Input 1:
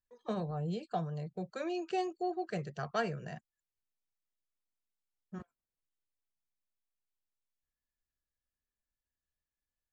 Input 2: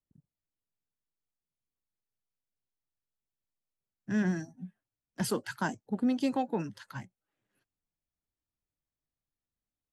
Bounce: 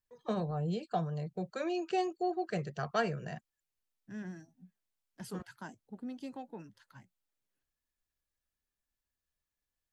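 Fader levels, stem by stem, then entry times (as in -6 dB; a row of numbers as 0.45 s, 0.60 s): +2.0 dB, -14.0 dB; 0.00 s, 0.00 s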